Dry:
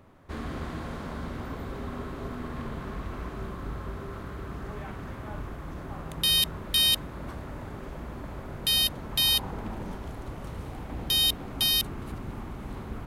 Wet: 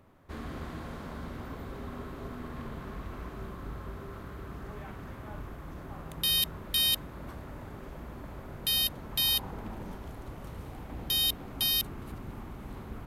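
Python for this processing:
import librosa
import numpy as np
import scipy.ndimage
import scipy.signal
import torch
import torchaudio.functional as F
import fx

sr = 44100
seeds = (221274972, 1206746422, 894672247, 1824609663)

y = fx.peak_eq(x, sr, hz=13000.0, db=7.5, octaves=0.27)
y = y * librosa.db_to_amplitude(-4.5)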